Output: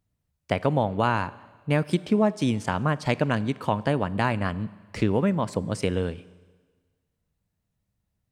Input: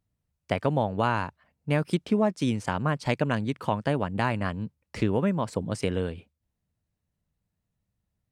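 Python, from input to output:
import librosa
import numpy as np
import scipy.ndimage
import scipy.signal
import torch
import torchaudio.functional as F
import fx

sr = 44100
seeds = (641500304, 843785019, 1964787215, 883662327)

y = fx.rev_schroeder(x, sr, rt60_s=1.5, comb_ms=30, drr_db=18.5)
y = y * 10.0 ** (2.0 / 20.0)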